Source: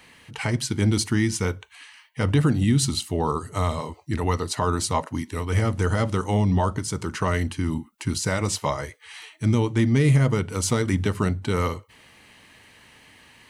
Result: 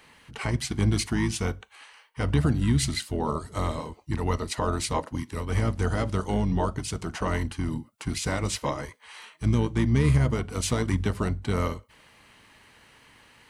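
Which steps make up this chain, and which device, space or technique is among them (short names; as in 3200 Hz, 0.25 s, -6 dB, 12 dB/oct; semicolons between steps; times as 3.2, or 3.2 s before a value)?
octave pedal (harmoniser -12 st -5 dB); gain -4.5 dB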